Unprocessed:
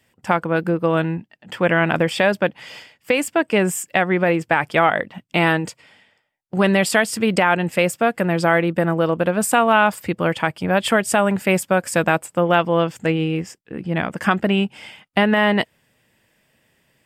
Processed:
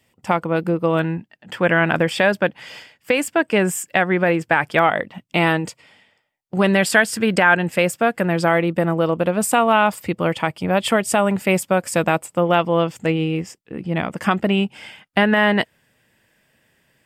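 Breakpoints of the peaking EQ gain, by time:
peaking EQ 1.6 kHz 0.23 oct
-8.5 dB
from 0.99 s +3 dB
from 4.79 s -3.5 dB
from 6.75 s +8 dB
from 7.59 s +1.5 dB
from 8.48 s -6 dB
from 14.75 s +5.5 dB

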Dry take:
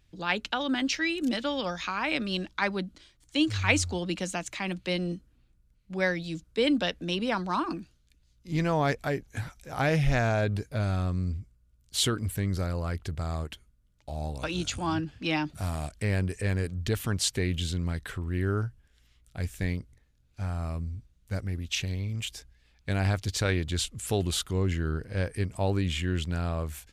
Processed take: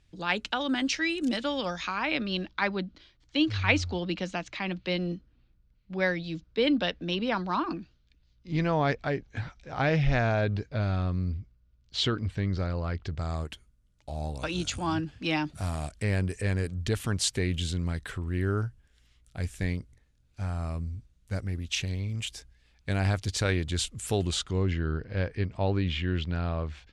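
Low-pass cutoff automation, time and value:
low-pass 24 dB/octave
1.60 s 10 kHz
2.15 s 5 kHz
12.99 s 5 kHz
13.52 s 11 kHz
24.11 s 11 kHz
24.80 s 4.6 kHz

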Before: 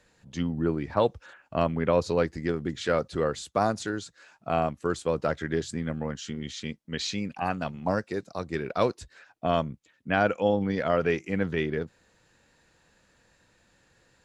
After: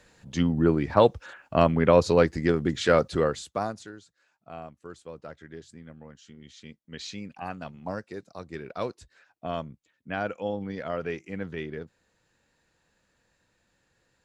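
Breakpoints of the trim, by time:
3.10 s +5 dB
3.58 s -4 dB
4.03 s -15 dB
6.25 s -15 dB
7.07 s -7 dB

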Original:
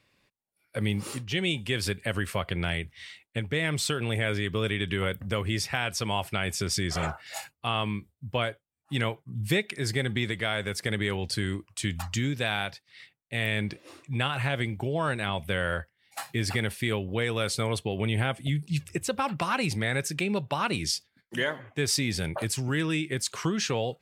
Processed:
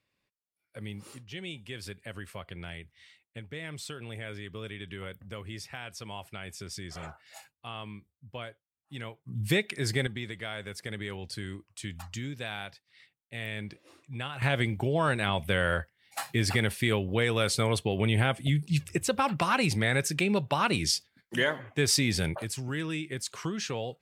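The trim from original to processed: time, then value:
-12 dB
from 9.24 s -0.5 dB
from 10.07 s -8.5 dB
from 14.42 s +1.5 dB
from 22.35 s -5.5 dB

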